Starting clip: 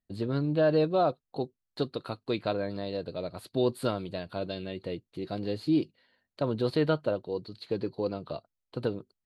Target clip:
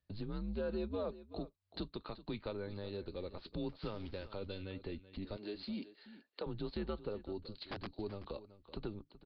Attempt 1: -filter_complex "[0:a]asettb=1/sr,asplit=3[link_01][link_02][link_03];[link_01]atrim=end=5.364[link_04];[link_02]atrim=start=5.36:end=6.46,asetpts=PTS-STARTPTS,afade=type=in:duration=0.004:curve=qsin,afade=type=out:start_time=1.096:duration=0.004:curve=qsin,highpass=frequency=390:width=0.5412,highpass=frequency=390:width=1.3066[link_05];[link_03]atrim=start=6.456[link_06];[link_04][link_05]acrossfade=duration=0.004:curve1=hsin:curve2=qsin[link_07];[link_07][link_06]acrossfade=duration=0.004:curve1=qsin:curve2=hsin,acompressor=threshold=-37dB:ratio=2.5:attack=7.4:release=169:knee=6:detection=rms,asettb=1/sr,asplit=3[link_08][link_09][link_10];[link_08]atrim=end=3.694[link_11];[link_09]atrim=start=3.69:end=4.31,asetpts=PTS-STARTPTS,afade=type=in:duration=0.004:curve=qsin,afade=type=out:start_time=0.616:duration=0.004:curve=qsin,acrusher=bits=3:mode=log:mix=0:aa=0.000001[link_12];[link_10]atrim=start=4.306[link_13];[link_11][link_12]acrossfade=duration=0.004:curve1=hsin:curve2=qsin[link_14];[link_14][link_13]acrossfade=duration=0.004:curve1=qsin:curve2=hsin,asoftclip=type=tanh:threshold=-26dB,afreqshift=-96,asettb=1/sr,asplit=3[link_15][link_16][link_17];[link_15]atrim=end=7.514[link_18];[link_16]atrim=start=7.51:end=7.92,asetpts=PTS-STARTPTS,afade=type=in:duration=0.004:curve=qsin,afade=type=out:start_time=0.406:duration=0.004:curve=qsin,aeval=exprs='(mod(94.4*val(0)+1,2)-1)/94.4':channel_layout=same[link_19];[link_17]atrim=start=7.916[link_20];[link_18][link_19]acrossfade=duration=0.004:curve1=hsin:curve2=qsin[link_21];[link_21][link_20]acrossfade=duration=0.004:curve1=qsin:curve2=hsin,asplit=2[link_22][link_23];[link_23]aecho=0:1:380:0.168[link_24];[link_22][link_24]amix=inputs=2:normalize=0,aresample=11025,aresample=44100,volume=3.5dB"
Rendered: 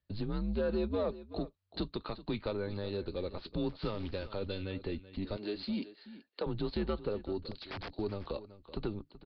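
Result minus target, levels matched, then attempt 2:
downward compressor: peak gain reduction −6.5 dB
-filter_complex "[0:a]asettb=1/sr,asplit=3[link_01][link_02][link_03];[link_01]atrim=end=5.364[link_04];[link_02]atrim=start=5.36:end=6.46,asetpts=PTS-STARTPTS,afade=type=in:duration=0.004:curve=qsin,afade=type=out:start_time=1.096:duration=0.004:curve=qsin,highpass=frequency=390:width=0.5412,highpass=frequency=390:width=1.3066[link_05];[link_03]atrim=start=6.456[link_06];[link_04][link_05]acrossfade=duration=0.004:curve1=hsin:curve2=qsin[link_07];[link_07][link_06]acrossfade=duration=0.004:curve1=qsin:curve2=hsin,acompressor=threshold=-48dB:ratio=2.5:attack=7.4:release=169:knee=6:detection=rms,asettb=1/sr,asplit=3[link_08][link_09][link_10];[link_08]atrim=end=3.694[link_11];[link_09]atrim=start=3.69:end=4.31,asetpts=PTS-STARTPTS,afade=type=in:duration=0.004:curve=qsin,afade=type=out:start_time=0.616:duration=0.004:curve=qsin,acrusher=bits=3:mode=log:mix=0:aa=0.000001[link_12];[link_10]atrim=start=4.306[link_13];[link_11][link_12]acrossfade=duration=0.004:curve1=hsin:curve2=qsin[link_14];[link_14][link_13]acrossfade=duration=0.004:curve1=qsin:curve2=hsin,asoftclip=type=tanh:threshold=-26dB,afreqshift=-96,asettb=1/sr,asplit=3[link_15][link_16][link_17];[link_15]atrim=end=7.514[link_18];[link_16]atrim=start=7.51:end=7.92,asetpts=PTS-STARTPTS,afade=type=in:duration=0.004:curve=qsin,afade=type=out:start_time=0.406:duration=0.004:curve=qsin,aeval=exprs='(mod(94.4*val(0)+1,2)-1)/94.4':channel_layout=same[link_19];[link_17]atrim=start=7.916[link_20];[link_18][link_19]acrossfade=duration=0.004:curve1=hsin:curve2=qsin[link_21];[link_21][link_20]acrossfade=duration=0.004:curve1=qsin:curve2=hsin,asplit=2[link_22][link_23];[link_23]aecho=0:1:380:0.168[link_24];[link_22][link_24]amix=inputs=2:normalize=0,aresample=11025,aresample=44100,volume=3.5dB"

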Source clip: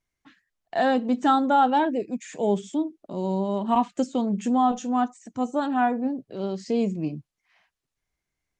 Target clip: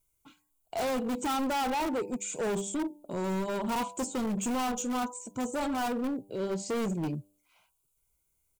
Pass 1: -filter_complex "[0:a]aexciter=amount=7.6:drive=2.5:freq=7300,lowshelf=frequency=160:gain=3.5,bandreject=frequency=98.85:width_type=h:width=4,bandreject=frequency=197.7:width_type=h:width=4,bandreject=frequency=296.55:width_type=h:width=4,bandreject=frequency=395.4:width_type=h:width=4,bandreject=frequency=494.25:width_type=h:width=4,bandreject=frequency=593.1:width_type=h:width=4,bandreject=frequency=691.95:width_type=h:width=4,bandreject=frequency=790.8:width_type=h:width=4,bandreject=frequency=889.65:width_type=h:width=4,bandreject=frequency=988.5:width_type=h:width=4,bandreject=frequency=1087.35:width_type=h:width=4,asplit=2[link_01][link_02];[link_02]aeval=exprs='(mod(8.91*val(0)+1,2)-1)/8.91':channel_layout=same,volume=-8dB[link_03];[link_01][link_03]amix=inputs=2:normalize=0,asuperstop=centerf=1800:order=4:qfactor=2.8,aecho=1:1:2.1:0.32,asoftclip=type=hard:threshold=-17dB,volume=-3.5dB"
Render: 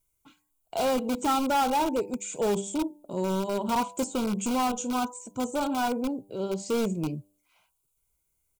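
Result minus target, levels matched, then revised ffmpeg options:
hard clipping: distortion −9 dB
-filter_complex "[0:a]aexciter=amount=7.6:drive=2.5:freq=7300,lowshelf=frequency=160:gain=3.5,bandreject=frequency=98.85:width_type=h:width=4,bandreject=frequency=197.7:width_type=h:width=4,bandreject=frequency=296.55:width_type=h:width=4,bandreject=frequency=395.4:width_type=h:width=4,bandreject=frequency=494.25:width_type=h:width=4,bandreject=frequency=593.1:width_type=h:width=4,bandreject=frequency=691.95:width_type=h:width=4,bandreject=frequency=790.8:width_type=h:width=4,bandreject=frequency=889.65:width_type=h:width=4,bandreject=frequency=988.5:width_type=h:width=4,bandreject=frequency=1087.35:width_type=h:width=4,asplit=2[link_01][link_02];[link_02]aeval=exprs='(mod(8.91*val(0)+1,2)-1)/8.91':channel_layout=same,volume=-8dB[link_03];[link_01][link_03]amix=inputs=2:normalize=0,asuperstop=centerf=1800:order=4:qfactor=2.8,aecho=1:1:2.1:0.32,asoftclip=type=hard:threshold=-24.5dB,volume=-3.5dB"

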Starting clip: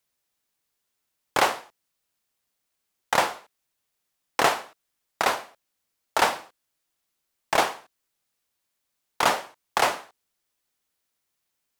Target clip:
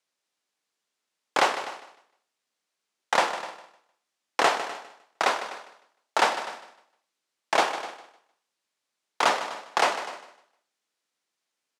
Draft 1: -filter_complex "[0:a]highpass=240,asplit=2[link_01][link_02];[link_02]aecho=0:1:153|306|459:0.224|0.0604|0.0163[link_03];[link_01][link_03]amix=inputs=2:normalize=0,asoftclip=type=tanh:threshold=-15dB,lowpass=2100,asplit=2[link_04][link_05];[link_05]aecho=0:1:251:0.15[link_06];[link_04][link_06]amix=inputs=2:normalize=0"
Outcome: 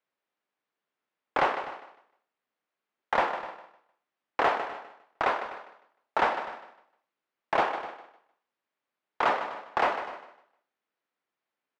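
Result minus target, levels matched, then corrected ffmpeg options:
8,000 Hz band −17.5 dB; soft clipping: distortion +12 dB
-filter_complex "[0:a]highpass=240,asplit=2[link_01][link_02];[link_02]aecho=0:1:153|306|459:0.224|0.0604|0.0163[link_03];[link_01][link_03]amix=inputs=2:normalize=0,asoftclip=type=tanh:threshold=-6dB,lowpass=7400,asplit=2[link_04][link_05];[link_05]aecho=0:1:251:0.15[link_06];[link_04][link_06]amix=inputs=2:normalize=0"

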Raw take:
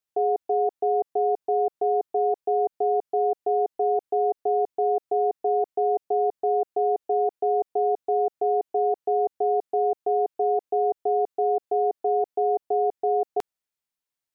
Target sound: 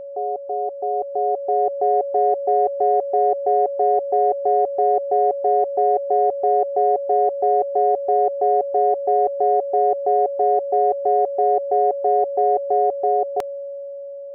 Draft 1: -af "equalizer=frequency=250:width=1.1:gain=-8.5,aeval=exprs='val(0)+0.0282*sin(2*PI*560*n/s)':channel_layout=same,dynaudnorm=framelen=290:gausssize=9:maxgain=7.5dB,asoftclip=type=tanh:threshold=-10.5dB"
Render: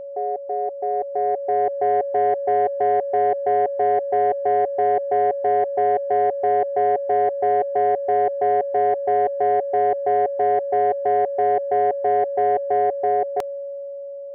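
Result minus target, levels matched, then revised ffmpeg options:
soft clipping: distortion +18 dB
-af "equalizer=frequency=250:width=1.1:gain=-8.5,aeval=exprs='val(0)+0.0282*sin(2*PI*560*n/s)':channel_layout=same,dynaudnorm=framelen=290:gausssize=9:maxgain=7.5dB,asoftclip=type=tanh:threshold=-0.5dB"

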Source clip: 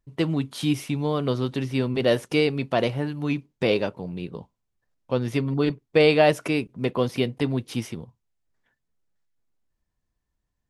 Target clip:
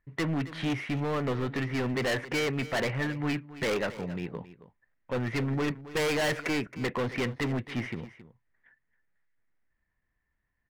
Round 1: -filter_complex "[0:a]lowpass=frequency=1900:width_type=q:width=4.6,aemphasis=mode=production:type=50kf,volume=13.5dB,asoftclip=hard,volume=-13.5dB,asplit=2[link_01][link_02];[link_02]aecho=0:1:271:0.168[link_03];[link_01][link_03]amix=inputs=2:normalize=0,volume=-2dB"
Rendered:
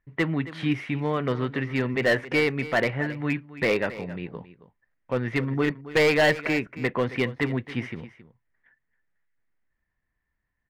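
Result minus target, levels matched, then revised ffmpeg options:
gain into a clipping stage and back: distortion −8 dB
-filter_complex "[0:a]lowpass=frequency=1900:width_type=q:width=4.6,aemphasis=mode=production:type=50kf,volume=24dB,asoftclip=hard,volume=-24dB,asplit=2[link_01][link_02];[link_02]aecho=0:1:271:0.168[link_03];[link_01][link_03]amix=inputs=2:normalize=0,volume=-2dB"

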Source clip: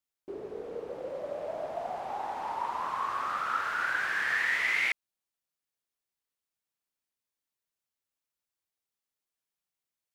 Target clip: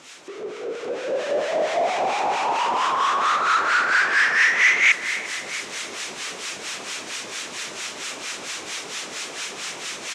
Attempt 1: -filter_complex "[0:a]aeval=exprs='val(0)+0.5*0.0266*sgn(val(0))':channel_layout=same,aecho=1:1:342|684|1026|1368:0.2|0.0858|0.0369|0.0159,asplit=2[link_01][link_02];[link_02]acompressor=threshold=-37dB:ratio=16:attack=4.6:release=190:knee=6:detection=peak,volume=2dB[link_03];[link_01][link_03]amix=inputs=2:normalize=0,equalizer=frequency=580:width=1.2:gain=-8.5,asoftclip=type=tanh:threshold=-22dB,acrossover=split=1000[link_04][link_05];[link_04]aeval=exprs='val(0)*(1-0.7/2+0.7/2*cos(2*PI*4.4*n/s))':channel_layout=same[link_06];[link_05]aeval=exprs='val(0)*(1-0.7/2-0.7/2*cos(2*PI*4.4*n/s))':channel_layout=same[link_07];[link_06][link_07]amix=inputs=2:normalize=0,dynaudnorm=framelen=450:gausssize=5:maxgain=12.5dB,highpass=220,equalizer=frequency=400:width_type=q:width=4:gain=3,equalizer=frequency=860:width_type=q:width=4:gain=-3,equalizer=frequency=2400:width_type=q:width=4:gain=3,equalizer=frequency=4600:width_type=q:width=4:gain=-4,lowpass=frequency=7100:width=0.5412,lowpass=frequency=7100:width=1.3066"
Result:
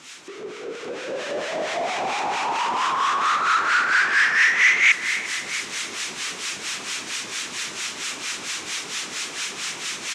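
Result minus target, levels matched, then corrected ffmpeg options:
downward compressor: peak gain reduction −8.5 dB; 500 Hz band −5.0 dB
-filter_complex "[0:a]aeval=exprs='val(0)+0.5*0.0266*sgn(val(0))':channel_layout=same,aecho=1:1:342|684|1026|1368:0.2|0.0858|0.0369|0.0159,asplit=2[link_01][link_02];[link_02]acompressor=threshold=-46dB:ratio=16:attack=4.6:release=190:knee=6:detection=peak,volume=2dB[link_03];[link_01][link_03]amix=inputs=2:normalize=0,asoftclip=type=tanh:threshold=-22dB,acrossover=split=1000[link_04][link_05];[link_04]aeval=exprs='val(0)*(1-0.7/2+0.7/2*cos(2*PI*4.4*n/s))':channel_layout=same[link_06];[link_05]aeval=exprs='val(0)*(1-0.7/2-0.7/2*cos(2*PI*4.4*n/s))':channel_layout=same[link_07];[link_06][link_07]amix=inputs=2:normalize=0,dynaudnorm=framelen=450:gausssize=5:maxgain=12.5dB,highpass=220,equalizer=frequency=400:width_type=q:width=4:gain=3,equalizer=frequency=860:width_type=q:width=4:gain=-3,equalizer=frequency=2400:width_type=q:width=4:gain=3,equalizer=frequency=4600:width_type=q:width=4:gain=-4,lowpass=frequency=7100:width=0.5412,lowpass=frequency=7100:width=1.3066"

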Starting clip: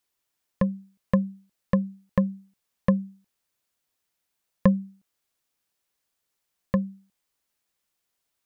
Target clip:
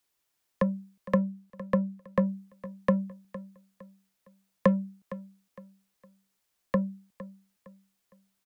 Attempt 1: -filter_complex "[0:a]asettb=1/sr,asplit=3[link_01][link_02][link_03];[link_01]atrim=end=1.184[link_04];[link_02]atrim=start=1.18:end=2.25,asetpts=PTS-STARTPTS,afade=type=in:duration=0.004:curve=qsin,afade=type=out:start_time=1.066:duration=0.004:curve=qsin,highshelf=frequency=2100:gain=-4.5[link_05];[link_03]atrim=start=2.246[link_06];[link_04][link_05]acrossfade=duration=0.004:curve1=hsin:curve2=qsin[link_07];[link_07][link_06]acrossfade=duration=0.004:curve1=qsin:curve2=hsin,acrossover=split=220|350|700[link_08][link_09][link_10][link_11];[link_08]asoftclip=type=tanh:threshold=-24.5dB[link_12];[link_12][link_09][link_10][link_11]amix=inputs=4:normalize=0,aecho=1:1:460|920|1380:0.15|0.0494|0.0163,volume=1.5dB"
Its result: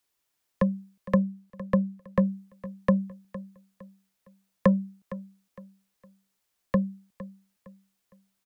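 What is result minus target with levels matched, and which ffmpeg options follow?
soft clipping: distortion −6 dB
-filter_complex "[0:a]asettb=1/sr,asplit=3[link_01][link_02][link_03];[link_01]atrim=end=1.184[link_04];[link_02]atrim=start=1.18:end=2.25,asetpts=PTS-STARTPTS,afade=type=in:duration=0.004:curve=qsin,afade=type=out:start_time=1.066:duration=0.004:curve=qsin,highshelf=frequency=2100:gain=-4.5[link_05];[link_03]atrim=start=2.246[link_06];[link_04][link_05]acrossfade=duration=0.004:curve1=hsin:curve2=qsin[link_07];[link_07][link_06]acrossfade=duration=0.004:curve1=qsin:curve2=hsin,acrossover=split=220|350|700[link_08][link_09][link_10][link_11];[link_08]asoftclip=type=tanh:threshold=-34dB[link_12];[link_12][link_09][link_10][link_11]amix=inputs=4:normalize=0,aecho=1:1:460|920|1380:0.15|0.0494|0.0163,volume=1.5dB"

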